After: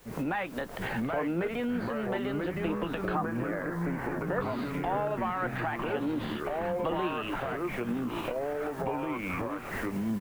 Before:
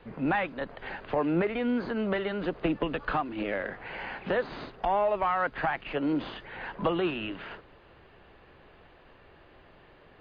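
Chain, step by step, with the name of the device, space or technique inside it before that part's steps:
delay with pitch and tempo change per echo 719 ms, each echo −3 semitones, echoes 3
0:03.15–0:04.41: high shelf with overshoot 2,200 Hz −12 dB, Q 1.5
cheap recorder with automatic gain (white noise bed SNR 30 dB; camcorder AGC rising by 68 dB per second)
double-tracking delay 17 ms −13.5 dB
level −5 dB

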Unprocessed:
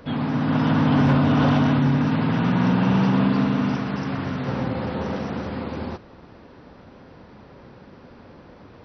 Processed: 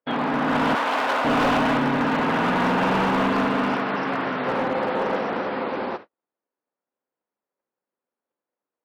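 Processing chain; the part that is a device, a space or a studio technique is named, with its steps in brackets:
walkie-talkie (band-pass filter 420–2,800 Hz; hard clipping −25 dBFS, distortion −12 dB; noise gate −43 dBFS, range −48 dB)
0:00.75–0:01.25: high-pass filter 540 Hz 12 dB per octave
level +8 dB

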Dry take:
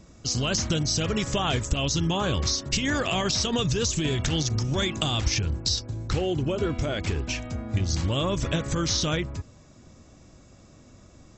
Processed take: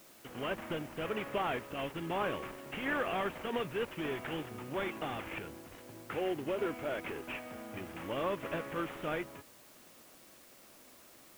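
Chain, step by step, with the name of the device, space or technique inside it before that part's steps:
army field radio (band-pass filter 360–3,000 Hz; variable-slope delta modulation 16 kbit/s; white noise bed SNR 21 dB)
level −4 dB

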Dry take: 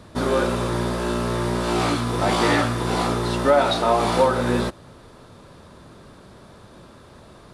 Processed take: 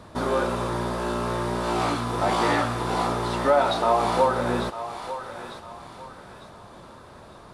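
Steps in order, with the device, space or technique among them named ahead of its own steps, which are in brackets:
feedback echo with a high-pass in the loop 900 ms, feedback 37%, high-pass 650 Hz, level −12 dB
parallel compression (in parallel at −3 dB: downward compressor, threshold −32 dBFS, peak gain reduction 18.5 dB)
on the sum: parametric band 900 Hz +6 dB 1.4 octaves
level −7 dB

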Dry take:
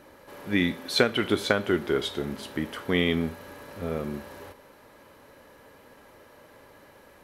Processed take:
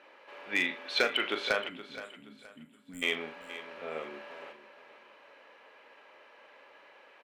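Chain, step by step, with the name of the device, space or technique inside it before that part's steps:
megaphone (band-pass filter 550–3,600 Hz; parametric band 2,600 Hz +8.5 dB 0.58 octaves; hard clipping −15.5 dBFS, distortion −15 dB; double-tracking delay 38 ms −10 dB)
gain on a spectral selection 0:01.69–0:03.03, 280–7,000 Hz −30 dB
repeating echo 472 ms, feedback 31%, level −14 dB
level −3 dB

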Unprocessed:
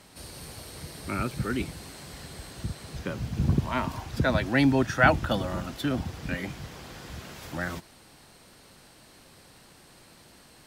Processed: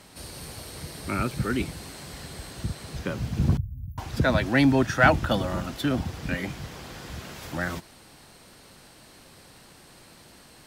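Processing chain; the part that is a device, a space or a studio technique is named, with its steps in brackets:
0:03.57–0:03.98: inverse Chebyshev band-stop filter 610–5,000 Hz, stop band 80 dB
parallel distortion (in parallel at −9 dB: hard clipping −19.5 dBFS, distortion −11 dB)

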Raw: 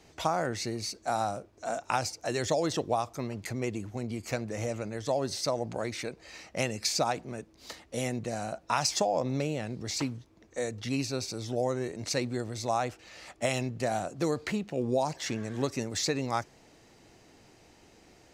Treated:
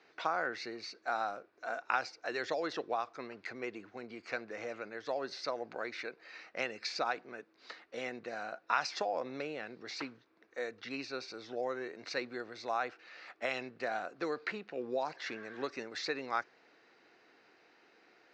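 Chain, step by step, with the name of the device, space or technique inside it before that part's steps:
phone earpiece (loudspeaker in its box 470–4,100 Hz, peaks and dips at 610 Hz −6 dB, 880 Hz −5 dB, 1,500 Hz +6 dB, 3,200 Hz −7 dB)
level −1.5 dB

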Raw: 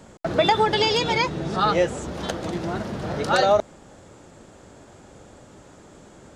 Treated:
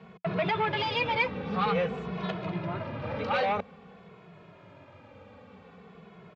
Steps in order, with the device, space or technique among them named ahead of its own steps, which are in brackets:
barber-pole flanger into a guitar amplifier (barber-pole flanger 2.3 ms −0.5 Hz; soft clipping −22 dBFS, distortion −10 dB; loudspeaker in its box 93–3,800 Hz, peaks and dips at 95 Hz +4 dB, 180 Hz +8 dB, 330 Hz −9 dB, 460 Hz +5 dB, 1,100 Hz +6 dB, 2,400 Hz +9 dB)
0:02.46–0:03.04: high-shelf EQ 6,700 Hz −10 dB
level −2.5 dB

